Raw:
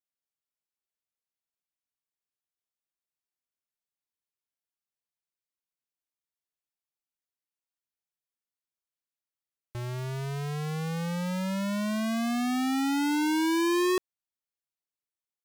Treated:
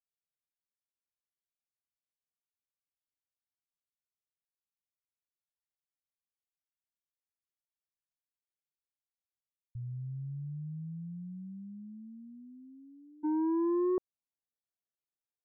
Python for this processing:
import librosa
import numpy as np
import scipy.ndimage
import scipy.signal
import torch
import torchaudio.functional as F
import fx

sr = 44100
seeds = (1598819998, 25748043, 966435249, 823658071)

y = fx.cheby2_lowpass(x, sr, hz=fx.steps((0.0, 670.0), (13.23, 3900.0)), order=4, stop_db=70)
y = y * 10.0 ** (-3.5 / 20.0)